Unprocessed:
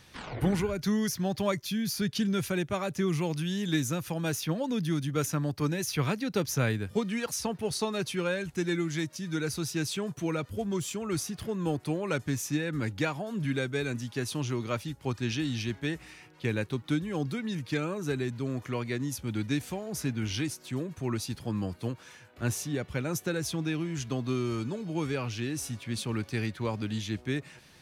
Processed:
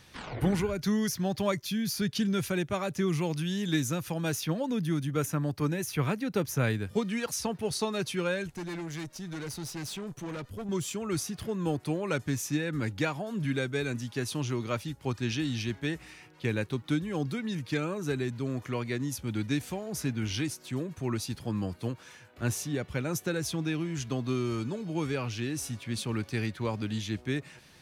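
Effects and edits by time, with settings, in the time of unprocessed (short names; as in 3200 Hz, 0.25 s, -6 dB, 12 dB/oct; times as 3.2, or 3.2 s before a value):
4.51–6.64 dynamic EQ 4700 Hz, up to -7 dB, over -50 dBFS, Q 1.1
8.47–10.69 tube stage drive 34 dB, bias 0.5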